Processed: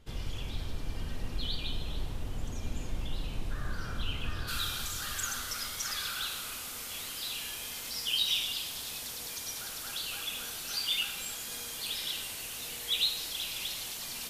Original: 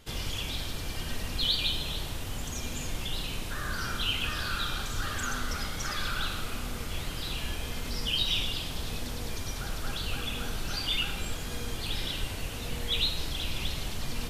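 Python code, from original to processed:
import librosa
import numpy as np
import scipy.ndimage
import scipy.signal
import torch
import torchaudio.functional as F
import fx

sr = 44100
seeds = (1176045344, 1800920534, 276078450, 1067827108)

y = fx.tilt_eq(x, sr, slope=fx.steps((0.0, -1.5), (4.47, 4.0)))
y = fx.echo_bbd(y, sr, ms=278, stages=2048, feedback_pct=70, wet_db=-6)
y = F.gain(torch.from_numpy(y), -7.5).numpy()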